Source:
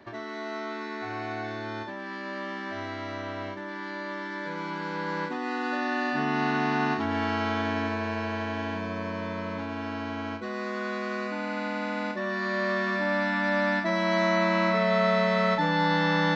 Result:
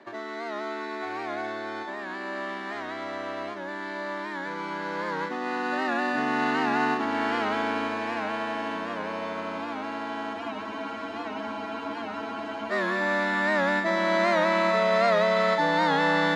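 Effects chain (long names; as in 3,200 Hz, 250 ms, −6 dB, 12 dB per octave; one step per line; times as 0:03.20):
in parallel at −11 dB: decimation without filtering 8×
on the sum: band-pass filter 270–5,500 Hz
on a send: feedback delay with all-pass diffusion 487 ms, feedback 78%, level −13.5 dB
on the sum: frozen spectrum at 0:10.36, 2.36 s
wow of a warped record 78 rpm, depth 100 cents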